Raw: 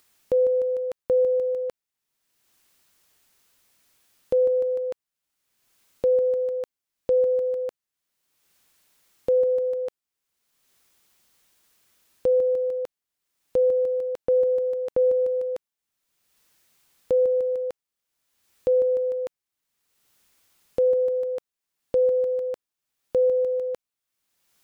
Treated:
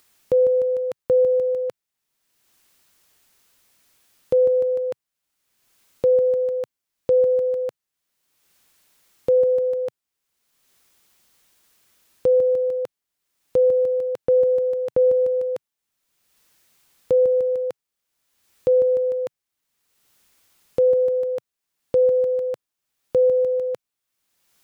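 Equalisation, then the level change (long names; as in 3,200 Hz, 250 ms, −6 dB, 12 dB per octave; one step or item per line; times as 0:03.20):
dynamic equaliser 130 Hz, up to +8 dB, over −48 dBFS, Q 1.4
+3.0 dB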